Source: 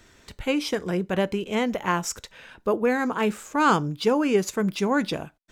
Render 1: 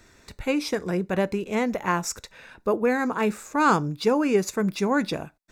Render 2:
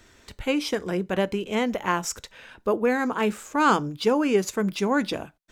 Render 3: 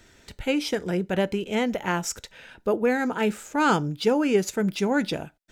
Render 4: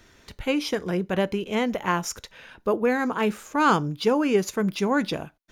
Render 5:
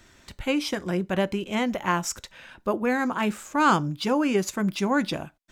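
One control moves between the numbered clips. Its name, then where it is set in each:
band-stop, frequency: 3.1 kHz, 160 Hz, 1.1 kHz, 7.9 kHz, 450 Hz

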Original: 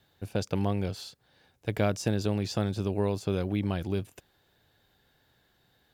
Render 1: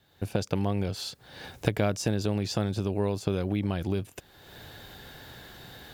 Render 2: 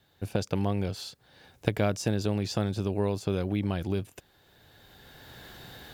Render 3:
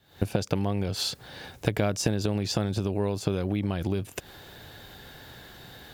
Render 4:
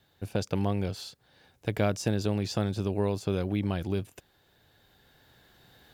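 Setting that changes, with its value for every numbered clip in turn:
recorder AGC, rising by: 35 dB/s, 14 dB/s, 89 dB/s, 5.4 dB/s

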